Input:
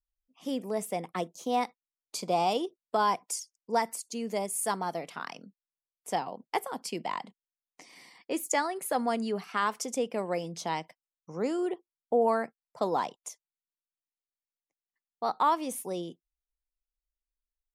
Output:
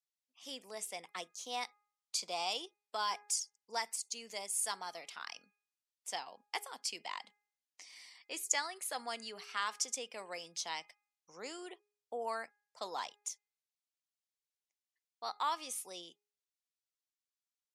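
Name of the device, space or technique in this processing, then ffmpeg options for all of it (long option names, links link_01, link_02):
piezo pickup straight into a mixer: -af "lowpass=5700,aderivative,bandreject=frequency=413.7:width_type=h:width=4,bandreject=frequency=827.4:width_type=h:width=4,bandreject=frequency=1241.1:width_type=h:width=4,bandreject=frequency=1654.8:width_type=h:width=4,bandreject=frequency=2068.5:width_type=h:width=4,bandreject=frequency=2482.2:width_type=h:width=4,volume=7dB"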